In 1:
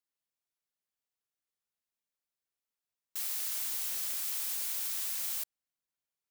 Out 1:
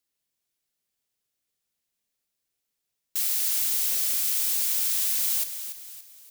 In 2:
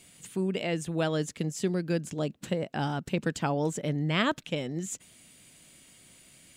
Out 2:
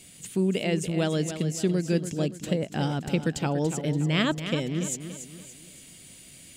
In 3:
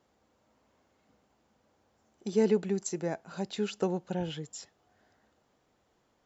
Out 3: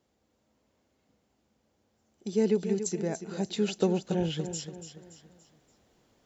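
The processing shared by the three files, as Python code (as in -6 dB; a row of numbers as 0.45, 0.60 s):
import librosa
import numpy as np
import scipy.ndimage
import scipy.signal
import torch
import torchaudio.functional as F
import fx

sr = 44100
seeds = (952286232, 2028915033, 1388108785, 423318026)

p1 = fx.peak_eq(x, sr, hz=1100.0, db=-7.0, octaves=1.8)
p2 = fx.rider(p1, sr, range_db=4, speed_s=2.0)
p3 = p2 + fx.echo_feedback(p2, sr, ms=286, feedback_pct=42, wet_db=-10, dry=0)
y = librosa.util.normalize(p3) * 10.0 ** (-12 / 20.0)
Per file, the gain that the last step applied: +10.0, +4.0, +3.0 dB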